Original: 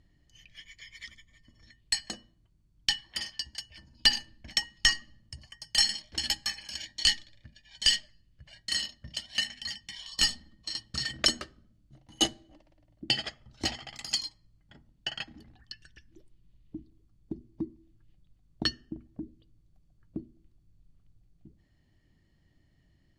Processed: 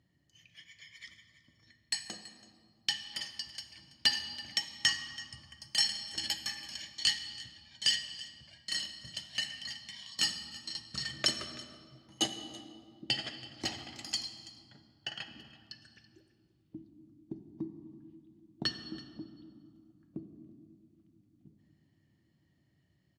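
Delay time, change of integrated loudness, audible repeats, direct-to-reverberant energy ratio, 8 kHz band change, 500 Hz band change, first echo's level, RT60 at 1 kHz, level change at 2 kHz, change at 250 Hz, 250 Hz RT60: 330 ms, −4.5 dB, 1, 7.0 dB, −4.5 dB, −4.0 dB, −20.0 dB, 2.4 s, −4.5 dB, −4.0 dB, 4.2 s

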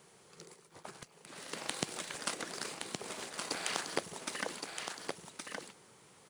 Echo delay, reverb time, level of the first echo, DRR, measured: 1,119 ms, no reverb audible, −5.0 dB, no reverb audible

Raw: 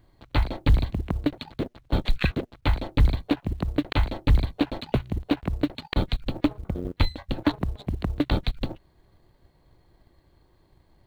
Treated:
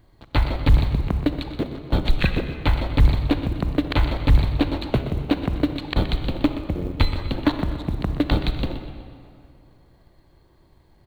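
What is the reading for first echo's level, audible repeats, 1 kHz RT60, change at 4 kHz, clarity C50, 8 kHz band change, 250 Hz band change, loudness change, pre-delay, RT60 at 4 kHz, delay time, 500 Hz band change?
−12.0 dB, 2, 2.5 s, +3.5 dB, 7.0 dB, can't be measured, +4.0 dB, +4.0 dB, 33 ms, 1.6 s, 124 ms, +4.0 dB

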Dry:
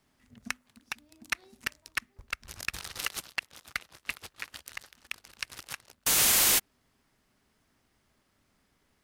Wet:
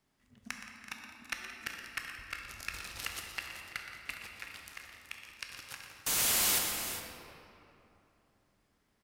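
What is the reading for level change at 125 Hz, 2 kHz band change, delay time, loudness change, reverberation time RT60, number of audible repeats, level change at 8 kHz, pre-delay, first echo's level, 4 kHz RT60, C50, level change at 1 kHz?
−3.5 dB, −4.5 dB, 120 ms, −6.0 dB, 3.0 s, 5, −5.5 dB, 12 ms, −11.0 dB, 1.6 s, 1.0 dB, −3.5 dB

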